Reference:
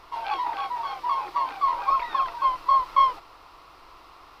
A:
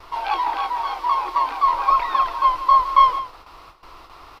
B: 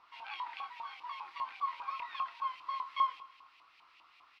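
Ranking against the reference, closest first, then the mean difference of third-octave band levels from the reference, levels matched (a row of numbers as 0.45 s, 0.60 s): A, B; 1.0 dB, 4.5 dB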